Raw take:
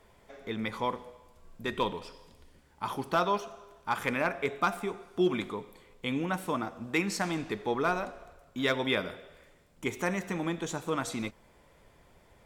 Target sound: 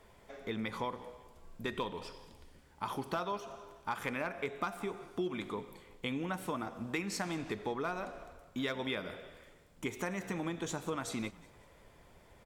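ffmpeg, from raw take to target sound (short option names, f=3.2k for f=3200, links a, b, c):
-filter_complex "[0:a]acompressor=threshold=-34dB:ratio=4,asplit=2[a][b];[b]asplit=3[c][d][e];[c]adelay=184,afreqshift=-55,volume=-21dB[f];[d]adelay=368,afreqshift=-110,volume=-27.6dB[g];[e]adelay=552,afreqshift=-165,volume=-34.1dB[h];[f][g][h]amix=inputs=3:normalize=0[i];[a][i]amix=inputs=2:normalize=0"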